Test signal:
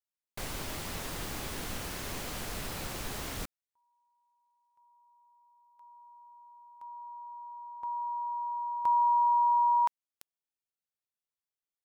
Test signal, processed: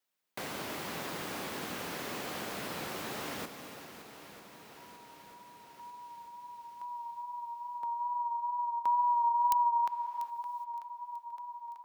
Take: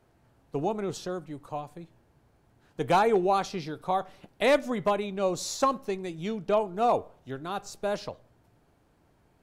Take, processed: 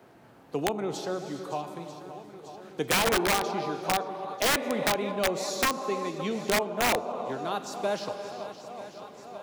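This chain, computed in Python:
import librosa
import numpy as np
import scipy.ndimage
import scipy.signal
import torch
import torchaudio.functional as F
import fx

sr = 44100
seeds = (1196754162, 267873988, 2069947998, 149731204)

y = fx.wow_flutter(x, sr, seeds[0], rate_hz=2.1, depth_cents=27.0)
y = scipy.signal.sosfilt(scipy.signal.butter(2, 180.0, 'highpass', fs=sr, output='sos'), y)
y = fx.peak_eq(y, sr, hz=9000.0, db=-5.5, octaves=1.7)
y = fx.echo_swing(y, sr, ms=942, ratio=1.5, feedback_pct=49, wet_db=-17.5)
y = fx.rev_gated(y, sr, seeds[1], gate_ms=440, shape='flat', drr_db=8.5)
y = (np.mod(10.0 ** (17.5 / 20.0) * y + 1.0, 2.0) - 1.0) / 10.0 ** (17.5 / 20.0)
y = fx.band_squash(y, sr, depth_pct=40)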